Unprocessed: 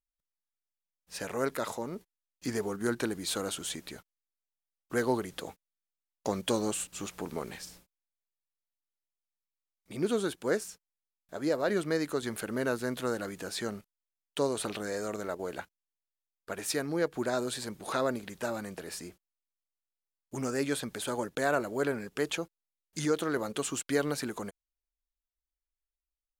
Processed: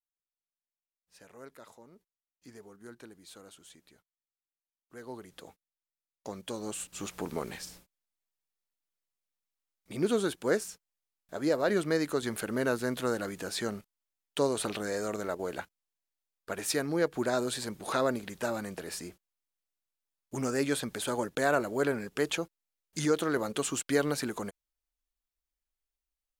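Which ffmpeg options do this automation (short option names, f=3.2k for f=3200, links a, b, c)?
-af "volume=1.5dB,afade=t=in:st=4.98:d=0.44:silence=0.354813,afade=t=in:st=6.57:d=0.6:silence=0.298538"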